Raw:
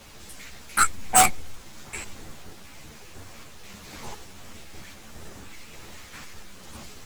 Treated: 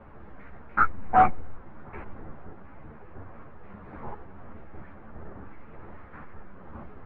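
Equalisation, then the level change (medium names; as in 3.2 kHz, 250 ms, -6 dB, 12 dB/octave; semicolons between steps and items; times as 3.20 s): low-pass 1.5 kHz 24 dB/octave; +1.5 dB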